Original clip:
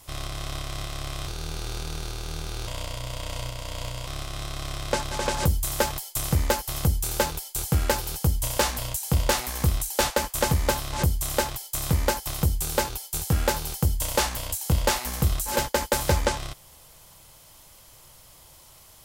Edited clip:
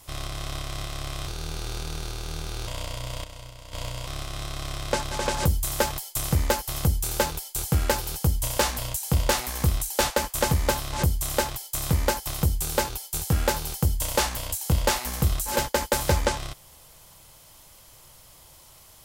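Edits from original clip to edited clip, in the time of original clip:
3.24–3.73 s: gain -9.5 dB

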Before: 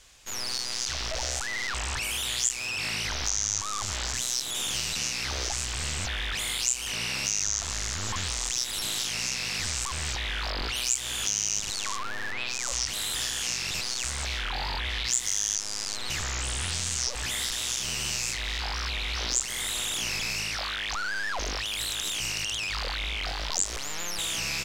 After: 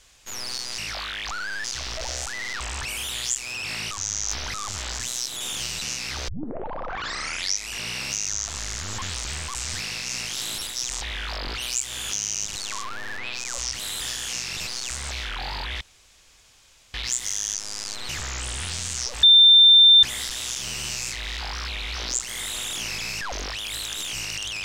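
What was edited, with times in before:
3.05–3.68 s: reverse
5.42 s: tape start 1.56 s
8.39–10.15 s: reverse
14.95 s: insert room tone 1.13 s
17.24 s: add tone 3.58 kHz -9 dBFS 0.80 s
20.42–21.28 s: move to 0.78 s

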